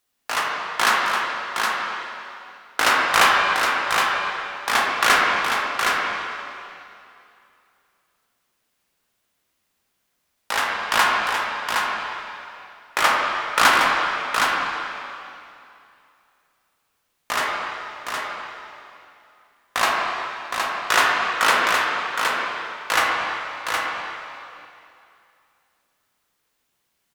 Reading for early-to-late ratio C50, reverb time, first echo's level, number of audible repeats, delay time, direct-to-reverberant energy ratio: -2.5 dB, 2.6 s, -5.0 dB, 1, 766 ms, -4.5 dB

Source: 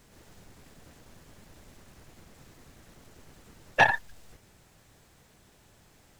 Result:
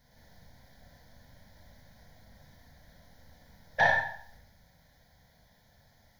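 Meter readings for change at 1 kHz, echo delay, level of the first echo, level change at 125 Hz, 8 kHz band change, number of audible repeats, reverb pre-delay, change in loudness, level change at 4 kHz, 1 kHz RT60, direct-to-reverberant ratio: -3.0 dB, no echo, no echo, -2.5 dB, no reading, no echo, 29 ms, -2.5 dB, -5.0 dB, 0.60 s, -2.5 dB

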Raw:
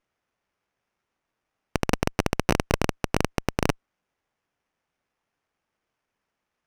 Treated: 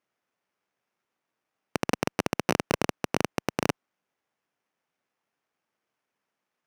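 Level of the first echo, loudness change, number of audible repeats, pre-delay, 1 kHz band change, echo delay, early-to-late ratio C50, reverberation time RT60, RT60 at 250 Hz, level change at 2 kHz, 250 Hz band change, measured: no echo, -3.0 dB, no echo, no reverb, -2.0 dB, no echo, no reverb, no reverb, no reverb, -2.0 dB, -2.5 dB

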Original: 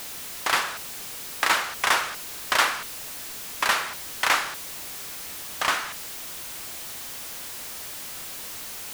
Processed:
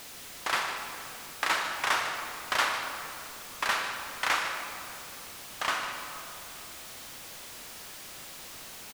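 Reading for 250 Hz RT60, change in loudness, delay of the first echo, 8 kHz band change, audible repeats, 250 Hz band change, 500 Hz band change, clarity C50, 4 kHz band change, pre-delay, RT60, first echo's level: 2.9 s, -5.5 dB, 151 ms, -7.5 dB, 1, -4.5 dB, -4.5 dB, 4.5 dB, -5.5 dB, 30 ms, 2.7 s, -12.5 dB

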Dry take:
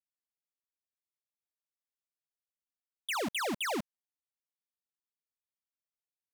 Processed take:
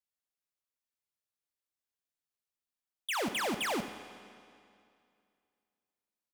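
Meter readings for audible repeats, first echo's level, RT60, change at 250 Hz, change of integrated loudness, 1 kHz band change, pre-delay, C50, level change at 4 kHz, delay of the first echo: 1, -13.0 dB, 2.4 s, +0.5 dB, +0.5 dB, +1.0 dB, 10 ms, 8.5 dB, +0.5 dB, 81 ms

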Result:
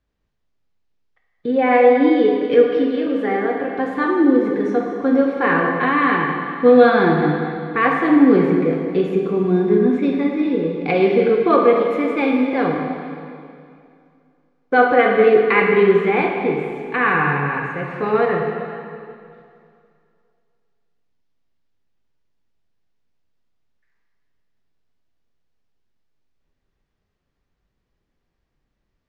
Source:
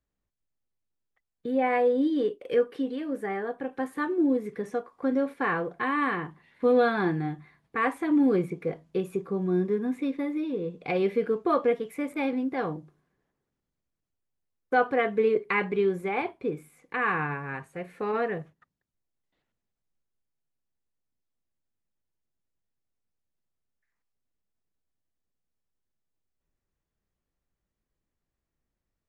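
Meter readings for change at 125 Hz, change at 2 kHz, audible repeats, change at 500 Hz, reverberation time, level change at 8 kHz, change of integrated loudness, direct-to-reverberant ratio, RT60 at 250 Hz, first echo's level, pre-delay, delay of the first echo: +10.5 dB, +11.0 dB, no echo, +11.5 dB, 2.4 s, no reading, +11.0 dB, 0.0 dB, 2.4 s, no echo, 7 ms, no echo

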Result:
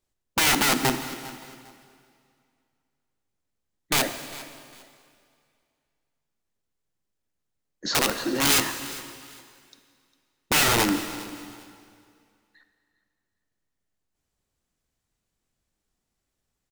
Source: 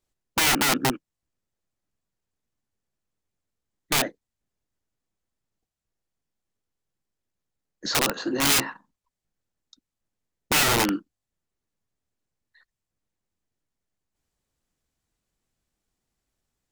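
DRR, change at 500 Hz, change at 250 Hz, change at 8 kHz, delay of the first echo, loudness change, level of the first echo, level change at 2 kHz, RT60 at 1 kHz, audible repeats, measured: 8.5 dB, +0.5 dB, +0.5 dB, +0.5 dB, 403 ms, -0.5 dB, -19.0 dB, +0.5 dB, 2.2 s, 2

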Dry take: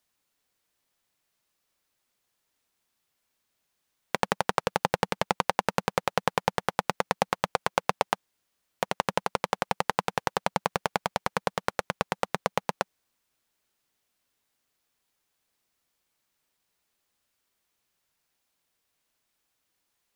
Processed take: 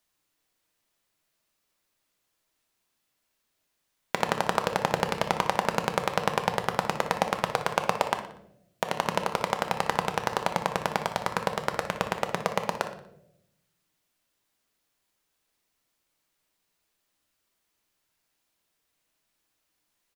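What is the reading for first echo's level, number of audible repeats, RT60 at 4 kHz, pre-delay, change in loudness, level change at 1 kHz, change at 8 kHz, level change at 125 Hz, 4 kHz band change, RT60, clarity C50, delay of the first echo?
-13.0 dB, 3, 0.50 s, 3 ms, +1.0 dB, +1.0 dB, +0.5 dB, +1.5 dB, +1.0 dB, 0.80 s, 8.5 dB, 60 ms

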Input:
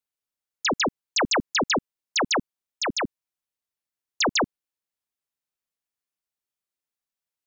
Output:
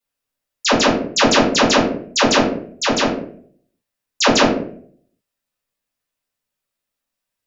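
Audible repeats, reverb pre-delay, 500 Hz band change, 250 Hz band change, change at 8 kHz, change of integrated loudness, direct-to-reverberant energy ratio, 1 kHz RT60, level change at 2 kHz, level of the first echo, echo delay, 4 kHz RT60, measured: no echo, 3 ms, +12.0 dB, +12.5 dB, no reading, +9.0 dB, -10.0 dB, 0.50 s, +7.5 dB, no echo, no echo, 0.35 s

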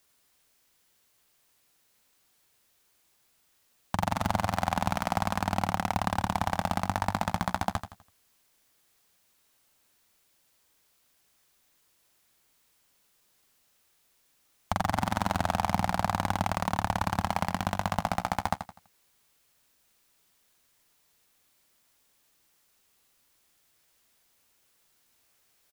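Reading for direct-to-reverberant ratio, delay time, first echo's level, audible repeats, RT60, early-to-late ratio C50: no reverb, 83 ms, -9.5 dB, 3, no reverb, no reverb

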